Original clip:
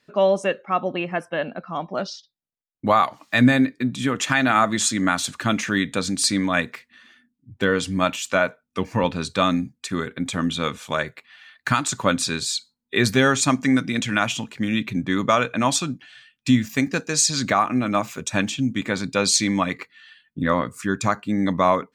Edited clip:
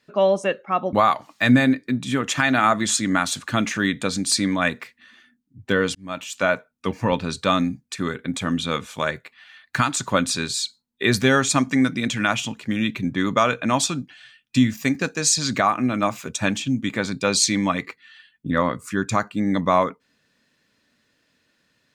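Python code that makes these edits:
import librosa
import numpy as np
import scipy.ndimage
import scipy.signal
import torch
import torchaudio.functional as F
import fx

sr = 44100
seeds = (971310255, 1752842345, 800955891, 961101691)

y = fx.edit(x, sr, fx.cut(start_s=0.93, length_s=1.92),
    fx.fade_in_span(start_s=7.87, length_s=0.55), tone=tone)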